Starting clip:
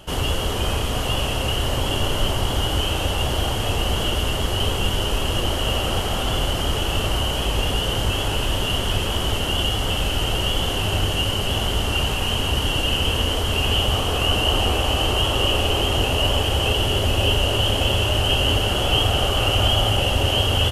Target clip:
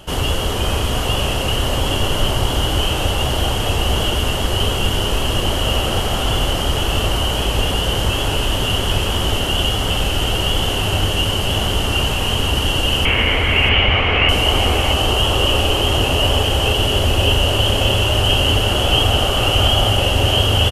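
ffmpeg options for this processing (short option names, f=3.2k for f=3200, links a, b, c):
-filter_complex "[0:a]asettb=1/sr,asplit=3[a][b][c];[a]atrim=end=13.054[d];[b]atrim=start=13.05:end=14.29,asetpts=PTS-STARTPTS,afade=t=in:d=0.004:c=qsin,afade=t=out:st=1.236:d=0.004:c=qsin,lowpass=f=2.2k:t=q:w=12[e];[c]atrim=start=14.286[f];[d][e]acrossfade=d=0.004:c1=hsin:c2=qsin[g];[g][f]acrossfade=d=0.004:c1=qsin:c2=hsin,aecho=1:1:638:0.316,volume=3.5dB"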